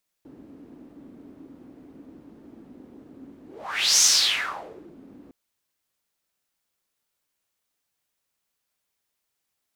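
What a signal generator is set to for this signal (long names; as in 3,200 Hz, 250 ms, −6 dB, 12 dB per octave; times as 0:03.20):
pass-by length 5.06 s, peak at 0:03.76, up 0.59 s, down 0.95 s, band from 280 Hz, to 6,100 Hz, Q 5, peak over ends 30 dB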